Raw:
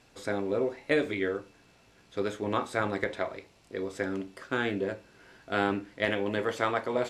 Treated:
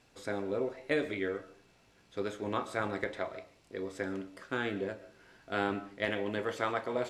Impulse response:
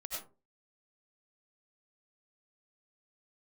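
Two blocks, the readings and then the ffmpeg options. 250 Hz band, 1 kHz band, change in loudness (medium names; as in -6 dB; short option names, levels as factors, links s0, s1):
-4.5 dB, -4.0 dB, -4.5 dB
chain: -filter_complex "[0:a]asplit=2[s0][s1];[1:a]atrim=start_sample=2205,adelay=32[s2];[s1][s2]afir=irnorm=-1:irlink=0,volume=0.188[s3];[s0][s3]amix=inputs=2:normalize=0,volume=0.596"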